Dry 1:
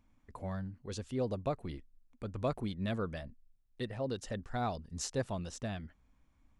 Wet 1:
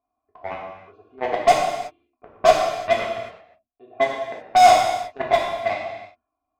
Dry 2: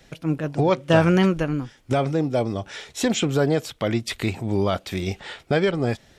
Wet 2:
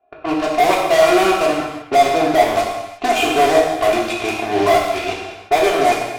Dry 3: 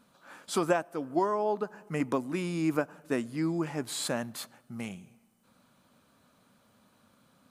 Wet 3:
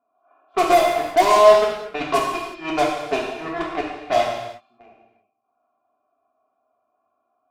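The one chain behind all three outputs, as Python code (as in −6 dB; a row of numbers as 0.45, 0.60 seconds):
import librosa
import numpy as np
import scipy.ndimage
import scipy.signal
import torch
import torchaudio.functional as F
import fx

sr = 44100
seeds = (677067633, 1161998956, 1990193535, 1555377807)

p1 = fx.vowel_filter(x, sr, vowel='a')
p2 = p1 + 0.94 * np.pad(p1, (int(2.9 * sr / 1000.0), 0))[:len(p1)]
p3 = fx.fuzz(p2, sr, gain_db=38.0, gate_db=-42.0)
p4 = p2 + (p3 * 10.0 ** (-3.5 / 20.0))
p5 = fx.env_lowpass(p4, sr, base_hz=1200.0, full_db=-20.0)
p6 = fx.rev_gated(p5, sr, seeds[0], gate_ms=390, shape='falling', drr_db=-2.5)
y = librosa.util.normalize(p6) * 10.0 ** (-1.5 / 20.0)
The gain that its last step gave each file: +5.0, +0.5, +0.5 decibels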